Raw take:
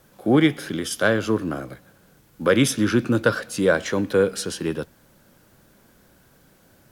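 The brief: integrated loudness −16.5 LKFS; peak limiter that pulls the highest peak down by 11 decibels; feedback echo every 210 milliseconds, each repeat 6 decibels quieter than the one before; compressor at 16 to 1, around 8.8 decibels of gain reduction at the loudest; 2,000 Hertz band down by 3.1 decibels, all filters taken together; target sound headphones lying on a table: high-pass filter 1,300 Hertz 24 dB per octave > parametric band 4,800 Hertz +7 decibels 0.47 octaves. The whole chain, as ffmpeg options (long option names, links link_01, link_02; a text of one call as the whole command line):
ffmpeg -i in.wav -af "equalizer=frequency=2000:width_type=o:gain=-3.5,acompressor=threshold=-21dB:ratio=16,alimiter=limit=-21.5dB:level=0:latency=1,highpass=frequency=1300:width=0.5412,highpass=frequency=1300:width=1.3066,equalizer=frequency=4800:width_type=o:width=0.47:gain=7,aecho=1:1:210|420|630|840|1050|1260:0.501|0.251|0.125|0.0626|0.0313|0.0157,volume=17.5dB" out.wav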